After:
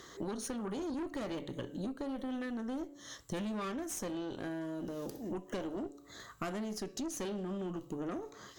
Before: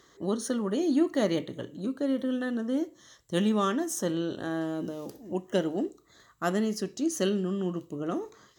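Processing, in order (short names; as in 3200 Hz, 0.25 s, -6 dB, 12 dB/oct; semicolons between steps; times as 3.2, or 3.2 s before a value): de-hum 142.3 Hz, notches 11; tube stage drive 28 dB, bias 0.6; compressor 8:1, threshold -47 dBFS, peak gain reduction 17 dB; gain +10 dB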